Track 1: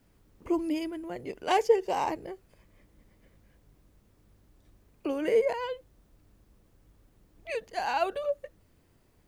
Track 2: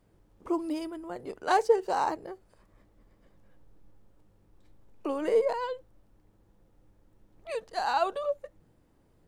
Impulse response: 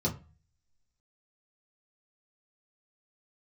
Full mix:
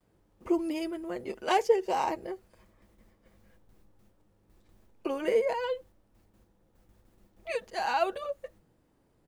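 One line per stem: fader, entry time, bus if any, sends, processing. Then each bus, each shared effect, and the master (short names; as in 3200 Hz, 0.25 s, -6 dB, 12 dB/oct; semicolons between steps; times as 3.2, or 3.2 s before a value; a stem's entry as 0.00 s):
-0.5 dB, 0.00 s, no send, gate with hold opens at -51 dBFS
-1.5 dB, 7.2 ms, polarity flipped, no send, compressor, threshold -31 dBFS, peak gain reduction 14 dB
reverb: off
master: low shelf 87 Hz -7 dB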